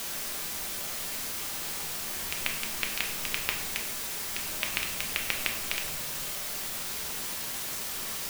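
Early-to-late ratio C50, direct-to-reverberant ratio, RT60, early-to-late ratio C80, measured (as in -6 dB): 7.5 dB, 2.0 dB, 0.75 s, 10.5 dB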